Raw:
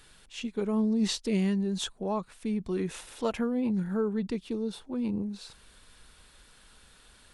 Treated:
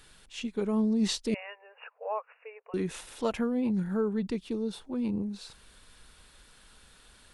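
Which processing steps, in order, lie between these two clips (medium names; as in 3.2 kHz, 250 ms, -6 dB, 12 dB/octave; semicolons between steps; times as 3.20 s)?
1.34–2.74 s: brick-wall FIR band-pass 430–2900 Hz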